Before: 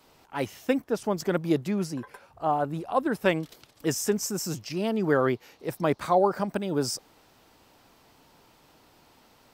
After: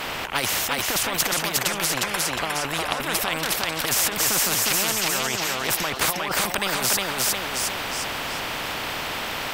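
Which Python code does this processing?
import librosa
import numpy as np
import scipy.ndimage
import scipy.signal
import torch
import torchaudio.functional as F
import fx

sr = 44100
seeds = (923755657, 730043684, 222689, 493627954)

p1 = fx.over_compress(x, sr, threshold_db=-31.0, ratio=-1.0)
p2 = fx.band_shelf(p1, sr, hz=1300.0, db=12.5, octaves=2.8)
p3 = p2 + fx.echo_thinned(p2, sr, ms=358, feedback_pct=30, hz=230.0, wet_db=-3.5, dry=0)
y = fx.spectral_comp(p3, sr, ratio=4.0)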